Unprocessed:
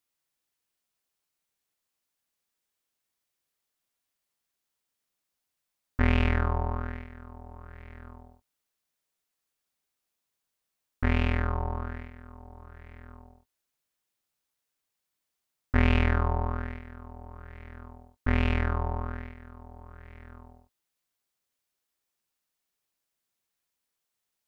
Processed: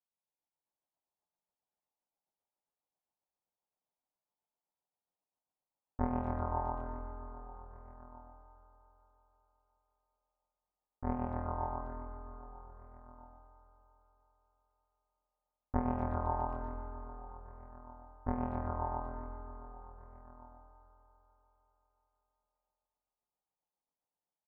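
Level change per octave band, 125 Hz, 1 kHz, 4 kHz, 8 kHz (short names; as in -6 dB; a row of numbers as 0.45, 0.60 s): -12.5 dB, -2.5 dB, under -35 dB, n/a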